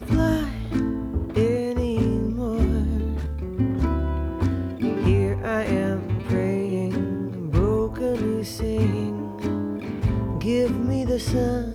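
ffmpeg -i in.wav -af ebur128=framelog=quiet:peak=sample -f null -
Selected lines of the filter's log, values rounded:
Integrated loudness:
  I:         -24.4 LUFS
  Threshold: -34.4 LUFS
Loudness range:
  LRA:         1.1 LU
  Threshold: -44.5 LUFS
  LRA low:   -25.0 LUFS
  LRA high:  -23.9 LUFS
Sample peak:
  Peak:       -9.0 dBFS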